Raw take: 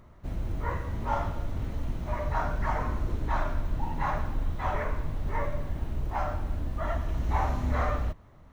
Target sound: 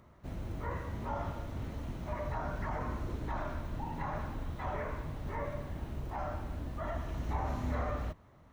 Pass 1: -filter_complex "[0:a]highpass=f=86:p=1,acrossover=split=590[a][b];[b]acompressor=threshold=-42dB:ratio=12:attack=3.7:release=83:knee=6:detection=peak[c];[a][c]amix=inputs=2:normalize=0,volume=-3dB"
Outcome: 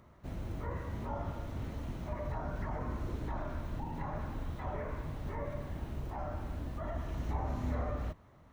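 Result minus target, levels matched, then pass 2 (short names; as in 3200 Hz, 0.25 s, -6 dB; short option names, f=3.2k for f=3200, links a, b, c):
compressor: peak gain reduction +6 dB
-filter_complex "[0:a]highpass=f=86:p=1,acrossover=split=590[a][b];[b]acompressor=threshold=-35.5dB:ratio=12:attack=3.7:release=83:knee=6:detection=peak[c];[a][c]amix=inputs=2:normalize=0,volume=-3dB"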